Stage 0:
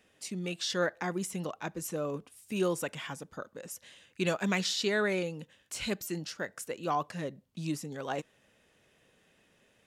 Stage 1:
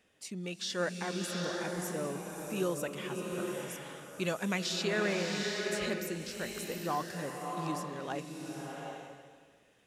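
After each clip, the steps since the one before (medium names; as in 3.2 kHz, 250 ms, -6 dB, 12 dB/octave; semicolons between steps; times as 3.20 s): swelling reverb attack 790 ms, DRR 1 dB; trim -3.5 dB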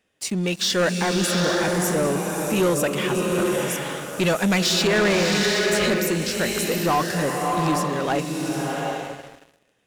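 waveshaping leveller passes 3; trim +5 dB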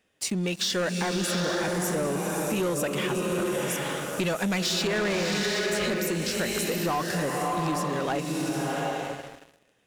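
compression, threshold -25 dBFS, peak gain reduction 7.5 dB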